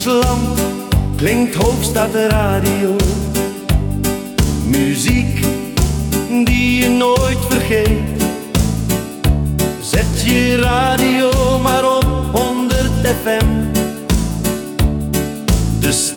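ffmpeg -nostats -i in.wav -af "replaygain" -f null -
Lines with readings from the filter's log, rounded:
track_gain = -2.9 dB
track_peak = 0.513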